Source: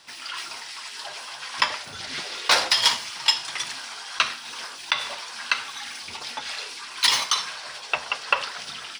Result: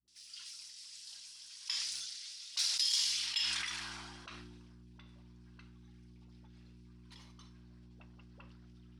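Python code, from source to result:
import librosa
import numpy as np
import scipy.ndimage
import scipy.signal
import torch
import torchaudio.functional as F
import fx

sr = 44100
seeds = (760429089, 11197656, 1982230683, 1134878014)

y = F.preemphasis(torch.from_numpy(x), 0.9).numpy()
y = fx.dmg_buzz(y, sr, base_hz=60.0, harmonics=6, level_db=-42.0, tilt_db=-8, odd_only=False)
y = fx.filter_sweep_bandpass(y, sr, from_hz=5500.0, to_hz=210.0, start_s=2.87, end_s=4.74, q=1.1)
y = fx.dispersion(y, sr, late='highs', ms=79.0, hz=330.0)
y = fx.sustainer(y, sr, db_per_s=25.0)
y = y * librosa.db_to_amplitude(-8.0)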